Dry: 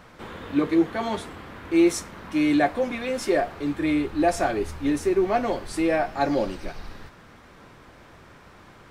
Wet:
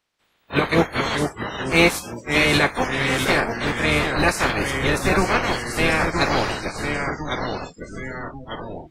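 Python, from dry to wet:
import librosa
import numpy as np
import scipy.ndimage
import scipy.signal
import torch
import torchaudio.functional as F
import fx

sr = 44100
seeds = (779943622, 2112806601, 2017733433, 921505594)

y = fx.spec_clip(x, sr, under_db=23)
y = fx.echo_pitch(y, sr, ms=342, semitones=-2, count=3, db_per_echo=-6.0)
y = fx.noise_reduce_blind(y, sr, reduce_db=30)
y = F.gain(torch.from_numpy(y), 2.5).numpy()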